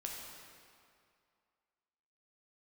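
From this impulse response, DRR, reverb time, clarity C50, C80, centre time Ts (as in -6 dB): -1.5 dB, 2.3 s, 1.0 dB, 2.0 dB, 0.101 s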